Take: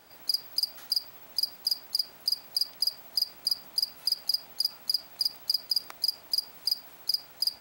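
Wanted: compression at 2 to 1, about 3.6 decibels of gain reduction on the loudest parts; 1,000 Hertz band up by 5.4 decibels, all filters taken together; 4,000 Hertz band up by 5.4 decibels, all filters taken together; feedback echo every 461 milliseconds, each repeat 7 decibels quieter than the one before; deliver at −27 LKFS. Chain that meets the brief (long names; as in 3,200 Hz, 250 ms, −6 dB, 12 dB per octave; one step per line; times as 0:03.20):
parametric band 1,000 Hz +6.5 dB
parametric band 4,000 Hz +7 dB
downward compressor 2 to 1, threshold −24 dBFS
repeating echo 461 ms, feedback 45%, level −7 dB
level −0.5 dB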